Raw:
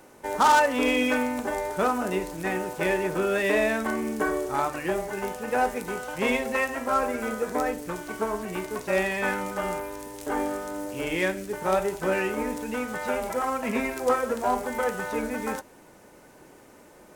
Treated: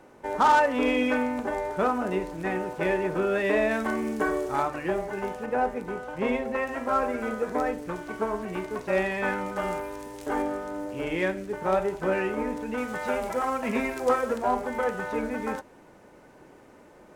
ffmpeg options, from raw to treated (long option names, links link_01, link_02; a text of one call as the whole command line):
ffmpeg -i in.wav -af "asetnsamples=nb_out_samples=441:pad=0,asendcmd='3.71 lowpass f 4900;4.63 lowpass f 2300;5.46 lowpass f 1100;6.67 lowpass f 2500;9.56 lowpass f 4400;10.42 lowpass f 2100;12.78 lowpass f 5400;14.38 lowpass f 2600',lowpass=frequency=2200:poles=1" out.wav